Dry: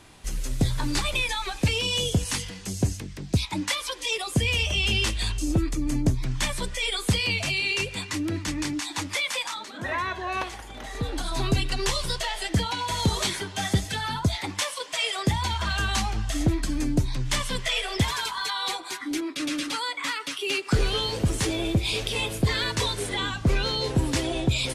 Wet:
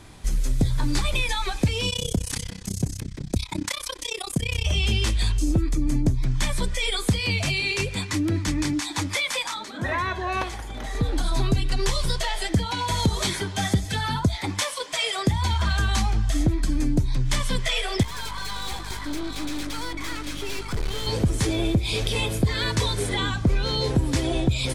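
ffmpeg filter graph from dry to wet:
-filter_complex "[0:a]asettb=1/sr,asplit=3[s0][s1][s2];[s0]atrim=end=1.904[s3];[s1]atrim=start=1.9:end=4.66,asetpts=PTS-STARTPTS,afade=t=in:d=0.004:c=qsin,afade=t=out:st=2.756:d=0.004:c=qsin,highshelf=f=5500:g=5.5,acompressor=threshold=0.0447:ratio=1.5:attack=3.2:release=140:knee=1:detection=peak,tremolo=f=32:d=0.974[s4];[s2]atrim=start=4.656[s5];[s3][s4]acrossfade=d=0.004:c1=hsin:c2=qsin[s6];[s6][s5]acrossfade=d=0.004:c1=qsin:c2=hsin,asettb=1/sr,asplit=3[s7][s8][s9];[s7]atrim=end=18.034[s10];[s8]atrim=start=18.03:end=21.07,asetpts=PTS-STARTPTS,afade=t=in:d=0.004:c=qsin,afade=t=out:st=3.036:d=0.004:c=qsin,aecho=1:1:680|875:0.355|0.299,atrim=end_sample=134064,aeval=exprs='val(0)+0.01*(sin(2*PI*50*n/s)+sin(2*PI*2*50*n/s)/2+sin(2*PI*3*50*n/s)/3+sin(2*PI*4*50*n/s)/4+sin(2*PI*5*50*n/s)/5)':c=same,aeval=exprs='(tanh(39.8*val(0)+0.7)-tanh(0.7))/39.8':c=same[s11];[s9]atrim=start=21.066[s12];[s10][s11]acrossfade=d=0.004:c1=hsin:c2=qsin[s13];[s13][s12]acrossfade=d=0.004:c1=qsin:c2=hsin,lowshelf=f=230:g=7.5,bandreject=f=2800:w=14,acompressor=threshold=0.0891:ratio=3,volume=1.26"

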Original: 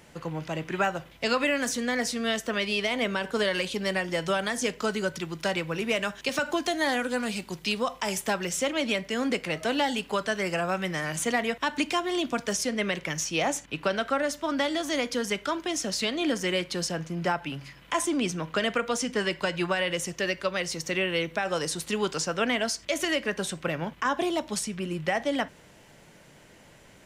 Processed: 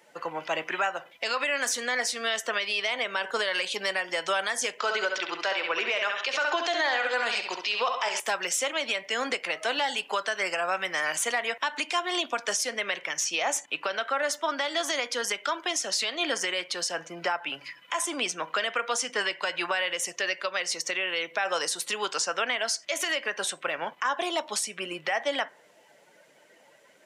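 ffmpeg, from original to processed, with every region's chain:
-filter_complex "[0:a]asettb=1/sr,asplit=3[s0][s1][s2];[s0]atrim=end=4.794[s3];[s1]atrim=start=4.79:end=8.2,asetpts=PTS-STARTPTS,afade=t=in:d=0.004:c=qsin,afade=t=out:st=3.406:d=0.004:c=qsin,acontrast=84,highpass=340,lowpass=4700,aecho=1:1:67|134|201|268:0.398|0.151|0.0575|0.0218,atrim=end_sample=150381[s4];[s2]atrim=start=8.196[s5];[s3][s4]acrossfade=d=0.004:c1=hsin:c2=qsin[s6];[s6][s5]acrossfade=d=0.004:c1=qsin:c2=hsin,afftdn=nr=14:nf=-49,highpass=680,alimiter=level_in=1.19:limit=0.0631:level=0:latency=1:release=263,volume=0.841,volume=2.51"

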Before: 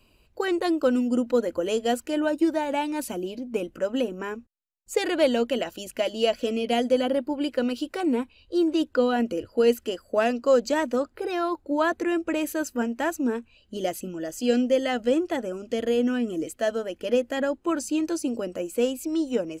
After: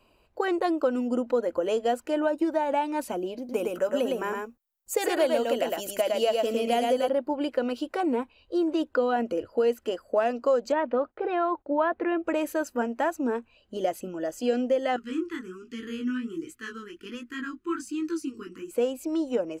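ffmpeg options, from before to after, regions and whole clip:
-filter_complex "[0:a]asettb=1/sr,asplit=3[s0][s1][s2];[s0]atrim=end=3.384[s3];[s1]atrim=start=3.38:end=7.09,asetpts=PTS-STARTPTS,afade=t=in:d=0.004:c=qsin,afade=t=out:st=3.706:d=0.004:c=qsin,aemphasis=mode=production:type=50fm,aecho=1:1:109:0.668,atrim=end_sample=163611[s4];[s2]atrim=start=7.086[s5];[s3][s4]acrossfade=d=0.004:c1=hsin:c2=qsin[s6];[s6][s5]acrossfade=d=0.004:c1=qsin:c2=hsin,asettb=1/sr,asplit=3[s7][s8][s9];[s7]atrim=end=10.724[s10];[s8]atrim=start=10.72:end=12.24,asetpts=PTS-STARTPTS,afade=t=in:d=0.004:c=qsin,afade=t=out:st=1.516:d=0.004:c=qsin,lowpass=f=3300:w=0.5412,lowpass=f=3300:w=1.3066,agate=range=0.1:threshold=0.00316:ratio=16:release=100:detection=peak[s11];[s9]atrim=start=12.236[s12];[s10][s11]acrossfade=d=0.004:c1=hsin:c2=qsin[s13];[s13][s12]acrossfade=d=0.004:c1=qsin:c2=hsin,asettb=1/sr,asplit=3[s14][s15][s16];[s14]atrim=end=14.964[s17];[s15]atrim=start=14.96:end=18.71,asetpts=PTS-STARTPTS,afade=t=in:d=0.004:c=qsin,afade=t=out:st=3.746:d=0.004:c=qsin,flanger=delay=16.5:depth=7.8:speed=1.3,asuperstop=centerf=660:order=8:qfactor=0.88[s18];[s16]atrim=start=18.706[s19];[s17][s18]acrossfade=d=0.004:c1=hsin:c2=qsin[s20];[s20][s19]acrossfade=d=0.004:c1=qsin:c2=hsin,equalizer=f=810:t=o:w=2.5:g=11.5,acompressor=threshold=0.158:ratio=2.5,volume=0.473"

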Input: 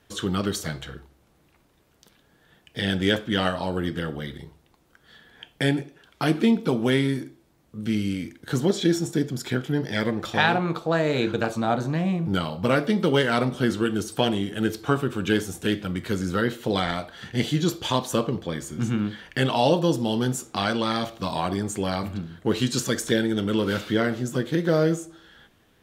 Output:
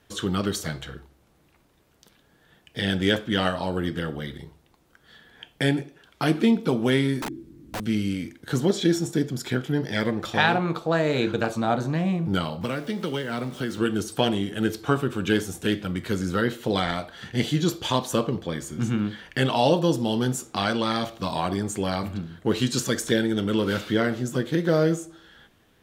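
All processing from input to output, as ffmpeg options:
-filter_complex "[0:a]asettb=1/sr,asplit=3[s0][s1][s2];[s0]atrim=end=7.224[s3];[s1]atrim=start=7.22:end=7.8,asetpts=PTS-STARTPTS,afade=t=in:d=0.004:c=qsin,afade=t=out:st=0.576:d=0.004:c=qsin,lowshelf=f=460:t=q:w=3:g=13,acompressor=threshold=0.0282:ratio=2:attack=3.2:release=140:knee=1:detection=peak,aeval=exprs='(mod(20*val(0)+1,2)-1)/20':c=same[s4];[s2]atrim=start=7.796[s5];[s3][s4]acrossfade=d=0.004:c1=hsin:c2=qsin[s6];[s6][s5]acrossfade=d=0.004:c1=qsin:c2=hsin,asettb=1/sr,asplit=3[s7][s8][s9];[s7]atrim=end=12.614[s10];[s8]atrim=start=12.61:end=13.78,asetpts=PTS-STARTPTS,afade=t=in:d=0.004:c=qsin,afade=t=out:st=1.166:d=0.004:c=qsin,highpass=70,acrossover=split=350|1400[s11][s12][s13];[s11]acompressor=threshold=0.0316:ratio=4[s14];[s12]acompressor=threshold=0.02:ratio=4[s15];[s13]acompressor=threshold=0.0158:ratio=4[s16];[s14][s15][s16]amix=inputs=3:normalize=0,aeval=exprs='val(0)*gte(abs(val(0)),0.00596)':c=same[s17];[s9]atrim=start=13.776[s18];[s10][s17]acrossfade=d=0.004:c1=hsin:c2=qsin[s19];[s19][s18]acrossfade=d=0.004:c1=qsin:c2=hsin"

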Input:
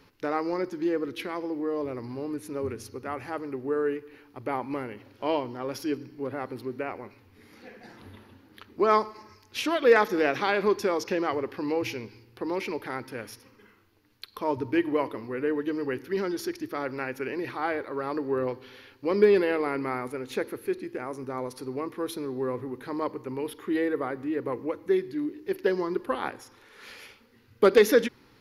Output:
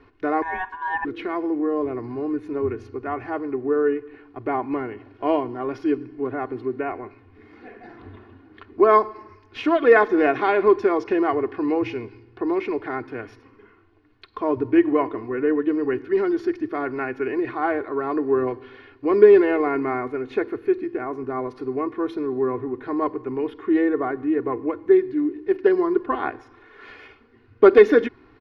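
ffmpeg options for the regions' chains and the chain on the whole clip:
-filter_complex "[0:a]asettb=1/sr,asplit=3[s0][s1][s2];[s0]atrim=end=0.424[s3];[s1]atrim=start=0.42:end=1.05,asetpts=PTS-STARTPTS,afade=t=in:d=0.004:c=qsin,afade=t=out:st=0.626:d=0.004:c=qsin,lowpass=f=3400:p=1,aeval=exprs='val(0)*sin(2*PI*1300*n/s)':c=same[s4];[s2]atrim=start=1.046[s5];[s3][s4]acrossfade=d=0.004:c1=hsin:c2=qsin[s6];[s6][s5]acrossfade=d=0.004:c1=qsin:c2=hsin,lowpass=1900,aecho=1:1:2.8:0.69,volume=1.68"

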